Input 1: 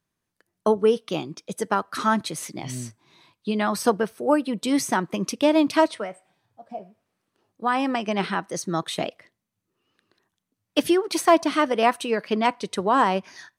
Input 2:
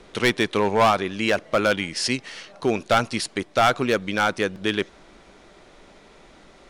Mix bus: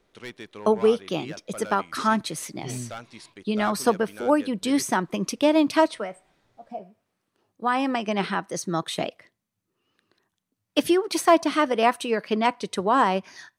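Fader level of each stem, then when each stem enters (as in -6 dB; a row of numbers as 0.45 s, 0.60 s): -0.5 dB, -19.0 dB; 0.00 s, 0.00 s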